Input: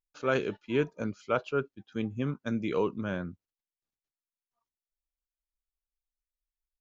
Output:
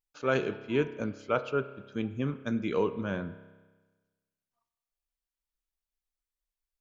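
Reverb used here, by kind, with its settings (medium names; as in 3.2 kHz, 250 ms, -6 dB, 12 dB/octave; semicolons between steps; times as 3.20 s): spring tank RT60 1.3 s, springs 30 ms, chirp 30 ms, DRR 12 dB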